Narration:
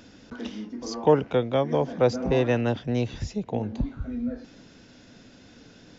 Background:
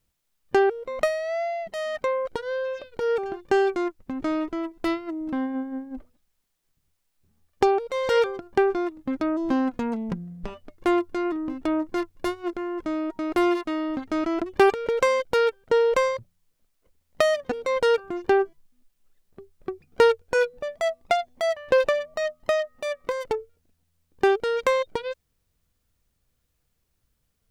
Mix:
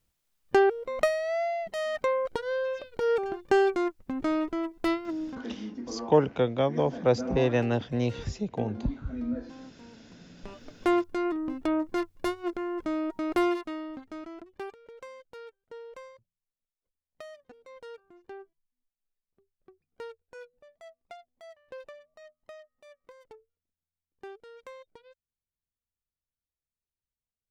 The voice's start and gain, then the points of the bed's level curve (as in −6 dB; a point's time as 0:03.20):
5.05 s, −2.0 dB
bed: 0:05.24 −1.5 dB
0:05.46 −24.5 dB
0:10.13 −24.5 dB
0:10.61 −2.5 dB
0:13.34 −2.5 dB
0:14.81 −24.5 dB